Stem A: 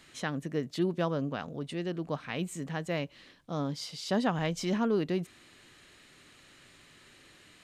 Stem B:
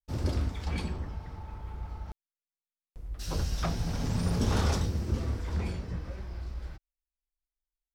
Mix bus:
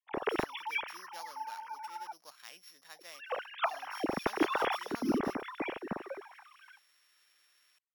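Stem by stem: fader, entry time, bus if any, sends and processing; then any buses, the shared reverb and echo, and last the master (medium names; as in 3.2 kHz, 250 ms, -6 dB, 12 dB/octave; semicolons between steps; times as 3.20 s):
-10.0 dB, 0.15 s, no send, sorted samples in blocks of 8 samples; high-pass 1.2 kHz 12 dB/octave
-5.5 dB, 0.00 s, no send, formants replaced by sine waves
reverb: none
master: none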